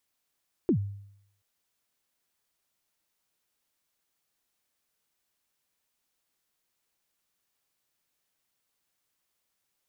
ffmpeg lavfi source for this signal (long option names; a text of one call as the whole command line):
ffmpeg -f lavfi -i "aevalsrc='0.126*pow(10,-3*t/0.73)*sin(2*PI*(400*0.087/log(100/400)*(exp(log(100/400)*min(t,0.087)/0.087)-1)+100*max(t-0.087,0)))':duration=0.73:sample_rate=44100" out.wav